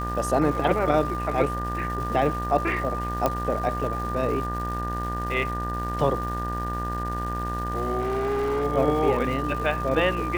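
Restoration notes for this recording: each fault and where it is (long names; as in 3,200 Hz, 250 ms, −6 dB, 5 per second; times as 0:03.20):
mains buzz 60 Hz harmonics 32 −31 dBFS
surface crackle 560 per second −35 dBFS
whistle 1,200 Hz −30 dBFS
0:03.26: click −9 dBFS
0:07.99–0:08.65: clipping −22 dBFS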